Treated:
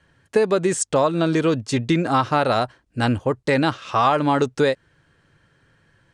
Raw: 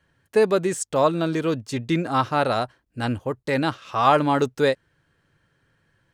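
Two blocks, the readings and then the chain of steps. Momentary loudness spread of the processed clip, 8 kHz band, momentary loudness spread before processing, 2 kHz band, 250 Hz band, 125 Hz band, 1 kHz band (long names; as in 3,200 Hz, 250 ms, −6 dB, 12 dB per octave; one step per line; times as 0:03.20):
5 LU, +5.0 dB, 9 LU, +2.5 dB, +3.5 dB, +3.5 dB, +1.5 dB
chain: low-pass filter 9,700 Hz 24 dB per octave
downward compressor 6 to 1, threshold −21 dBFS, peak gain reduction 9 dB
level +6.5 dB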